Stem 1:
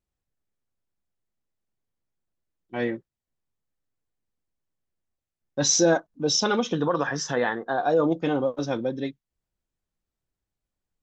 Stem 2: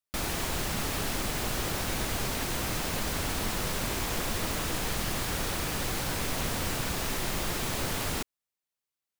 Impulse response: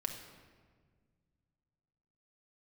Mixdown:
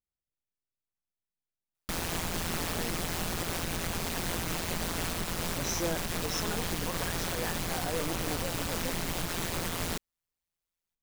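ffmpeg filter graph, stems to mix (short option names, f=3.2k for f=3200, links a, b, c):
-filter_complex "[0:a]volume=-13dB[a];[1:a]tremolo=f=170:d=0.919,adelay=1750,volume=3dB[b];[a][b]amix=inputs=2:normalize=0,alimiter=limit=-20dB:level=0:latency=1:release=67"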